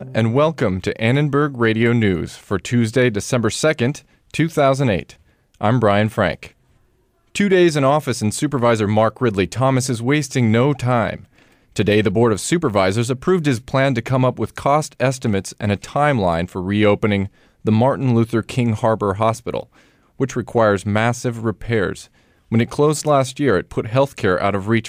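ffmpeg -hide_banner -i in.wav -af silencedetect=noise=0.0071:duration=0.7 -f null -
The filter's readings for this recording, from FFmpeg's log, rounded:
silence_start: 6.51
silence_end: 7.35 | silence_duration: 0.84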